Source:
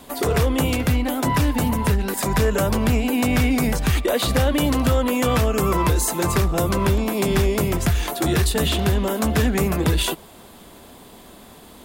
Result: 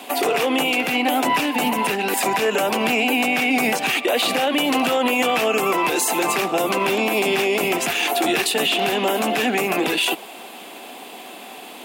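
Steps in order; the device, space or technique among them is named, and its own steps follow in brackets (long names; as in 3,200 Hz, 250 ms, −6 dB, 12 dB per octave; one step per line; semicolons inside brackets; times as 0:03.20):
laptop speaker (high-pass filter 250 Hz 24 dB per octave; parametric band 760 Hz +9.5 dB 0.24 octaves; parametric band 2,600 Hz +12 dB 0.59 octaves; brickwall limiter −16 dBFS, peak gain reduction 11 dB)
level +5 dB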